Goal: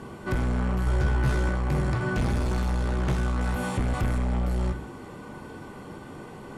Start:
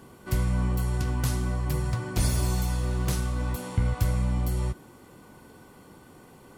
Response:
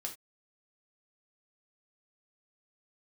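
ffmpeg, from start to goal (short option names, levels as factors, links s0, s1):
-filter_complex "[0:a]asettb=1/sr,asplit=3[s0][s1][s2];[s0]atrim=end=3.414[s3];[s1]atrim=start=3.41:end=4.18,asetpts=PTS-STARTPTS,afade=t=in:d=0.004:c=qsin,afade=t=out:st=0.766:d=0.004:c=qsin,aemphasis=mode=production:type=50fm[s4];[s2]atrim=start=4.176[s5];[s3][s4]acrossfade=d=0.004:c1=hsin:c2=qsin[s6];[s6][s5]acrossfade=d=0.004:c1=qsin:c2=hsin,acrossover=split=3000[s7][s8];[s8]acompressor=threshold=0.00891:ratio=4:attack=1:release=60[s9];[s7][s9]amix=inputs=2:normalize=0,lowpass=8600,asoftclip=type=tanh:threshold=0.0299,asettb=1/sr,asplit=3[s10][s11][s12];[s10]atrim=end=0.854[s13];[s11]atrim=start=0.85:end=1.49,asetpts=PTS-STARTPTS,afade=t=in:d=0.004:c=qsin,afade=t=out:st=0.636:d=0.004:c=qsin,asplit=2[s14][s15];[s15]adelay=14,volume=0.596[s16];[s14][s16]amix=inputs=2:normalize=0,atrim=end_sample=28224[s17];[s12]atrim=start=1.486[s18];[s13][s17]acrossfade=d=0.004:c1=hsin:c2=qsin[s19];[s19][s18]acrossfade=d=0.004:c1=qsin:c2=hsin,asplit=2[s20][s21];[1:a]atrim=start_sample=2205,asetrate=28665,aresample=44100,lowpass=3400[s22];[s21][s22]afir=irnorm=-1:irlink=0,volume=0.794[s23];[s20][s23]amix=inputs=2:normalize=0,volume=1.78"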